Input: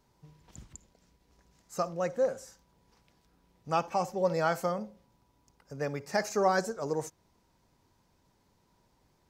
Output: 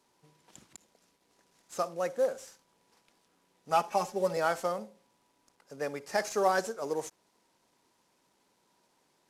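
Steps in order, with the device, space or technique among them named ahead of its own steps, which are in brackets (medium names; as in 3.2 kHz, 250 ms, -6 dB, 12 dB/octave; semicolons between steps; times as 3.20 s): early wireless headset (high-pass 270 Hz 12 dB/octave; CVSD coder 64 kbps); 3.70–4.37 s: comb 4.8 ms, depth 70%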